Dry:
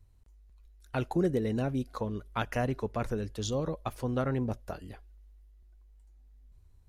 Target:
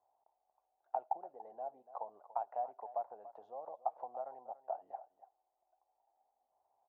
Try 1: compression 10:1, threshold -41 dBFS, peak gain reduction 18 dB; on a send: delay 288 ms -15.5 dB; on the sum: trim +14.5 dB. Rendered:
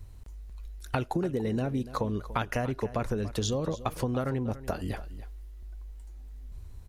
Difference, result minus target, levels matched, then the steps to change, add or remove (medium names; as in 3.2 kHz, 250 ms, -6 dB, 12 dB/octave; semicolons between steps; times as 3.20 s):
1 kHz band -9.0 dB
add after compression: Butterworth band-pass 760 Hz, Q 3.6